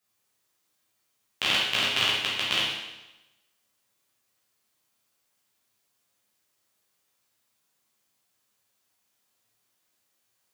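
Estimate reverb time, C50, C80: 1.0 s, 0.5 dB, 3.5 dB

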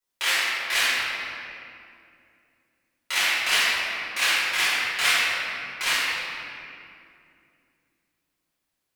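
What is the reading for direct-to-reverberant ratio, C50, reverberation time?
−13.0 dB, −4.0 dB, 2.5 s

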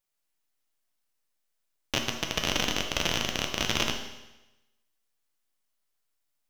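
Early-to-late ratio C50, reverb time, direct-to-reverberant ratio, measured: 6.0 dB, 1.0 s, 2.5 dB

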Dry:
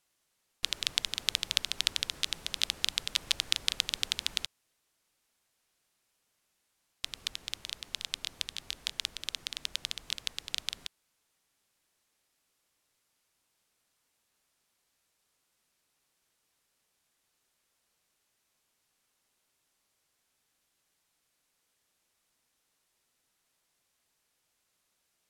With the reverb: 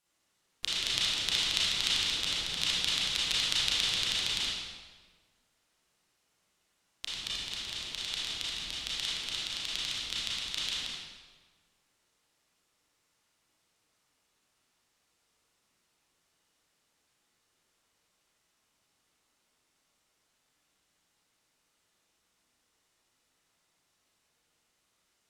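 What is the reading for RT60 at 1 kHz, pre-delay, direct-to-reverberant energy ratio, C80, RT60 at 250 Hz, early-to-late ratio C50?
1.4 s, 29 ms, −8.5 dB, 0.0 dB, 1.5 s, −3.5 dB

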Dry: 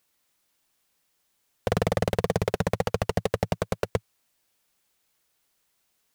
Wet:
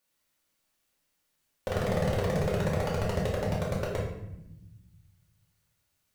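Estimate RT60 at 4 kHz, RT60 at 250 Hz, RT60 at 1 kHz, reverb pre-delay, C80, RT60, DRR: 0.60 s, 1.8 s, 0.75 s, 3 ms, 5.5 dB, 0.90 s, −5.5 dB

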